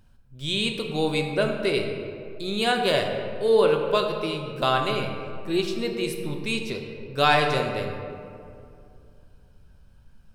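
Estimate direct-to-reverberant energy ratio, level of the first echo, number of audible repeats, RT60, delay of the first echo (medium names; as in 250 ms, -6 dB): 2.5 dB, no echo, no echo, 2.5 s, no echo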